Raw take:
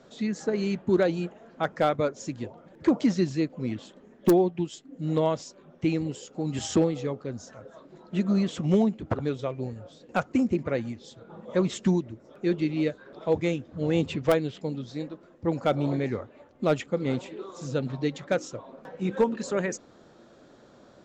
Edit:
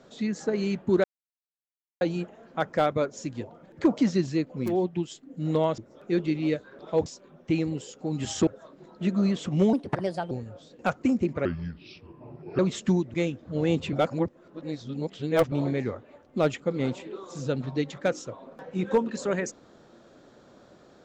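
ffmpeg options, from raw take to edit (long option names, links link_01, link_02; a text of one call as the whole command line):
ffmpeg -i in.wav -filter_complex "[0:a]asplit=13[link_01][link_02][link_03][link_04][link_05][link_06][link_07][link_08][link_09][link_10][link_11][link_12][link_13];[link_01]atrim=end=1.04,asetpts=PTS-STARTPTS,afade=type=out:start_time=1.036:duration=0.004:curve=hsin,apad=pad_dur=0.97[link_14];[link_02]atrim=start=1.04:end=3.89,asetpts=PTS-STARTPTS,afade=type=in:duration=0.004:curve=hsin[link_15];[link_03]atrim=start=4.24:end=5.402[link_16];[link_04]atrim=start=12.118:end=13.402[link_17];[link_05]atrim=start=5.398:end=6.812[link_18];[link_06]atrim=start=7.588:end=8.854[link_19];[link_07]atrim=start=8.85:end=9.61,asetpts=PTS-STARTPTS,asetrate=57771,aresample=44100[link_20];[link_08]atrim=start=9.606:end=10.754[link_21];[link_09]atrim=start=10.75:end=11.57,asetpts=PTS-STARTPTS,asetrate=31752,aresample=44100[link_22];[link_10]atrim=start=11.566:end=12.122[link_23];[link_11]atrim=start=13.398:end=14.192[link_24];[link_12]atrim=start=14.188:end=15.782,asetpts=PTS-STARTPTS,areverse[link_25];[link_13]atrim=start=15.778[link_26];[link_14][link_15]concat=n=2:v=0:a=1[link_27];[link_27][link_16]acrossfade=duration=0.24:curve1=tri:curve2=tri[link_28];[link_28][link_17]acrossfade=duration=0.004:curve1=hsin:curve2=hsin[link_29];[link_29][link_18]acrossfade=duration=0.004:curve1=hsin:curve2=hsin[link_30];[link_30][link_19]acrossfade=duration=0.004:curve1=hsin:curve2=hsin[link_31];[link_31][link_20]acrossfade=duration=0.004:curve1=hsin:curve2=hsin[link_32];[link_32][link_21]acrossfade=duration=0.004:curve1=hsin:curve2=hsin[link_33];[link_33][link_22]acrossfade=duration=0.004:curve1=hsin:curve2=hsin[link_34];[link_34][link_23]acrossfade=duration=0.004:curve1=hsin:curve2=hsin[link_35];[link_35][link_24]acrossfade=duration=0.004:curve1=hsin:curve2=hsin[link_36];[link_36][link_25]acrossfade=duration=0.004:curve1=hsin:curve2=hsin[link_37];[link_37][link_26]acrossfade=duration=0.004:curve1=hsin:curve2=hsin" out.wav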